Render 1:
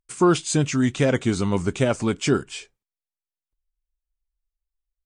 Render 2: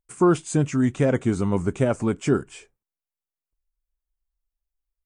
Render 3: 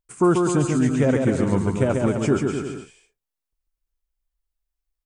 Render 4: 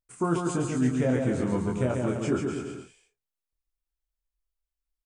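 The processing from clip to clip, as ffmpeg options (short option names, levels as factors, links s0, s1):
-af "equalizer=f=4100:t=o:w=1.7:g=-13"
-af "aecho=1:1:140|252|341.6|413.3|470.6:0.631|0.398|0.251|0.158|0.1"
-filter_complex "[0:a]asplit=2[s0][s1];[s1]adelay=24,volume=0.708[s2];[s0][s2]amix=inputs=2:normalize=0,volume=0.398"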